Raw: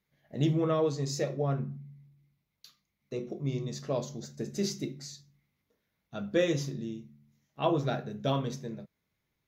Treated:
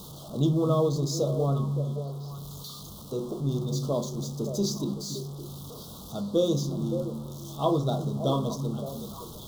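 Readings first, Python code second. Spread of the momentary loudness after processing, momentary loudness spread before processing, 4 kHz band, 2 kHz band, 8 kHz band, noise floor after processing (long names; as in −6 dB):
14 LU, 16 LU, +4.0 dB, below −20 dB, +5.0 dB, −43 dBFS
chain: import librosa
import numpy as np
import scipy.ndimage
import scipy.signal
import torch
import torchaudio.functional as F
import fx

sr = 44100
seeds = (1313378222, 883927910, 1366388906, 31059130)

y = x + 0.5 * 10.0 ** (-38.5 / 20.0) * np.sign(x)
y = scipy.signal.sosfilt(scipy.signal.ellip(3, 1.0, 50, [1200.0, 3400.0], 'bandstop', fs=sr, output='sos'), y)
y = fx.echo_stepped(y, sr, ms=284, hz=180.0, octaves=1.4, feedback_pct=70, wet_db=-4.5)
y = F.gain(torch.from_numpy(y), 2.5).numpy()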